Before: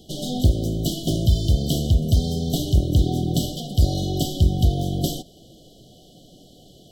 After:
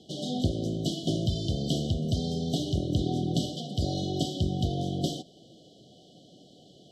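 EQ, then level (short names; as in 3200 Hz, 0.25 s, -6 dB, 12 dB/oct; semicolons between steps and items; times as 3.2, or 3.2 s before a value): BPF 130–6000 Hz; -4.0 dB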